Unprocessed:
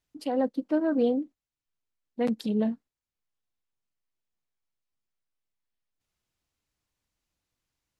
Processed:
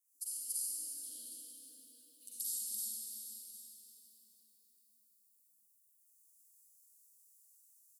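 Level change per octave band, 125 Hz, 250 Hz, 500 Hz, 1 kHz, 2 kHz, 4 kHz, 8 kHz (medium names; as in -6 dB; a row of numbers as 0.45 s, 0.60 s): under -40 dB, under -40 dB, under -40 dB, under -40 dB, under -35 dB, -2.0 dB, no reading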